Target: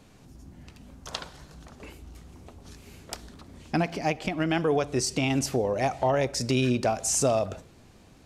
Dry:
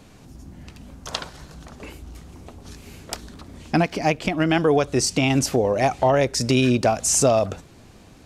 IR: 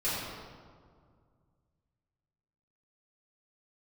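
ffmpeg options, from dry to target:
-filter_complex "[0:a]asplit=2[a][b];[1:a]atrim=start_sample=2205,afade=t=out:st=0.21:d=0.01,atrim=end_sample=9702,asetrate=35280,aresample=44100[c];[b][c]afir=irnorm=-1:irlink=0,volume=-26dB[d];[a][d]amix=inputs=2:normalize=0,volume=-6.5dB"

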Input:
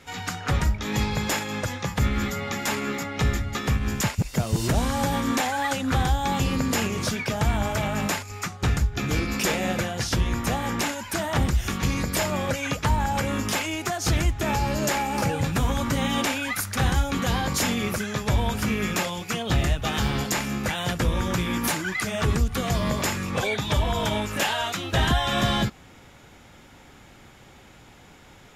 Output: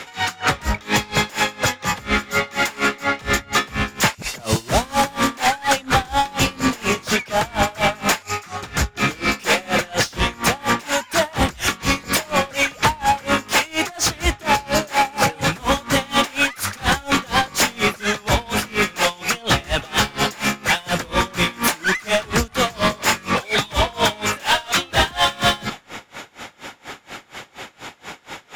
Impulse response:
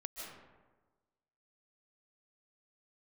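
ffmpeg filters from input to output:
-filter_complex "[0:a]asplit=2[a][b];[b]highpass=f=720:p=1,volume=23dB,asoftclip=type=tanh:threshold=-12dB[c];[a][c]amix=inputs=2:normalize=0,lowpass=f=5.3k:p=1,volume=-6dB,asplit=2[d][e];[1:a]atrim=start_sample=2205[f];[e][f]afir=irnorm=-1:irlink=0,volume=-19dB[g];[d][g]amix=inputs=2:normalize=0,aeval=exprs='val(0)*pow(10,-26*(0.5-0.5*cos(2*PI*4.2*n/s))/20)':c=same,volume=5dB"

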